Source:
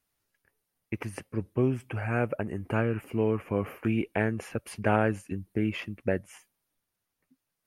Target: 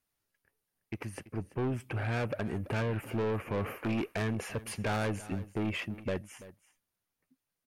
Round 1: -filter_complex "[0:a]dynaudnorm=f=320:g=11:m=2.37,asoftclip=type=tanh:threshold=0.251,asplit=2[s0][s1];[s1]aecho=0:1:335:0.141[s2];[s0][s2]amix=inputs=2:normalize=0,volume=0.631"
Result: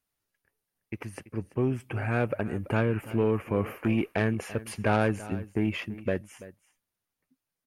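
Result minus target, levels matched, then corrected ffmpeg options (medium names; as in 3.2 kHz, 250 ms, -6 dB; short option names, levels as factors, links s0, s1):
saturation: distortion -11 dB
-filter_complex "[0:a]dynaudnorm=f=320:g=11:m=2.37,asoftclip=type=tanh:threshold=0.0631,asplit=2[s0][s1];[s1]aecho=0:1:335:0.141[s2];[s0][s2]amix=inputs=2:normalize=0,volume=0.631"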